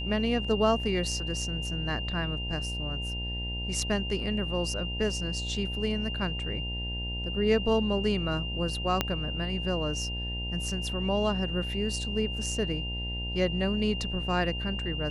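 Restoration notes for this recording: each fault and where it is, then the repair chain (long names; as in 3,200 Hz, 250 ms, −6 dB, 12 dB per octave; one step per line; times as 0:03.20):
mains buzz 60 Hz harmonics 16 −35 dBFS
whistle 2,800 Hz −35 dBFS
0:09.01: click −10 dBFS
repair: click removal
hum removal 60 Hz, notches 16
notch filter 2,800 Hz, Q 30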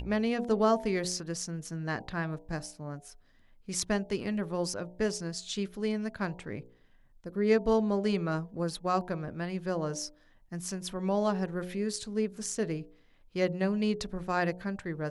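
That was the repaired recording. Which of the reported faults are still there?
0:09.01: click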